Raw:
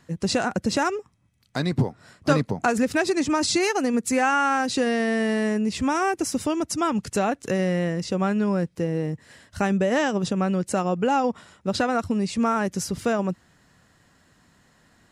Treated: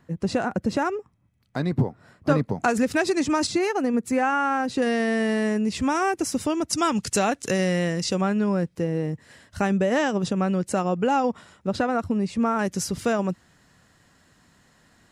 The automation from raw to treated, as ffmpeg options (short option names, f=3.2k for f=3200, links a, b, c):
-af "asetnsamples=n=441:p=0,asendcmd='2.51 equalizer g -0.5;3.47 equalizer g -10;4.82 equalizer g -0.5;6.73 equalizer g 8;8.21 equalizer g -1.5;11.67 equalizer g -8;12.59 equalizer g 1.5',equalizer=f=6.8k:t=o:w=2.8:g=-10.5"